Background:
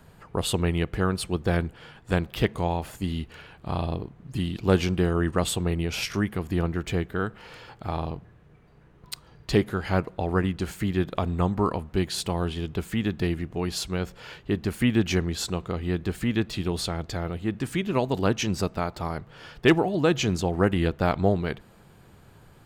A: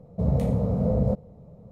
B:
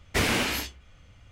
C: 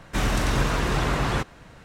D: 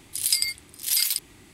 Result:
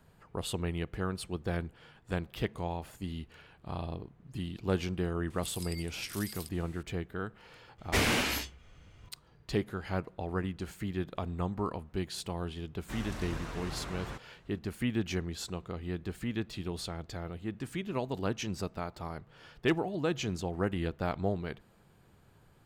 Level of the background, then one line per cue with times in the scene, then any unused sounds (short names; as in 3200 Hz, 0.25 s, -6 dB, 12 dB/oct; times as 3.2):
background -9.5 dB
5.3 add D -6.5 dB + compressor 12:1, threshold -34 dBFS
7.78 add B -3 dB
12.75 add C -17 dB
not used: A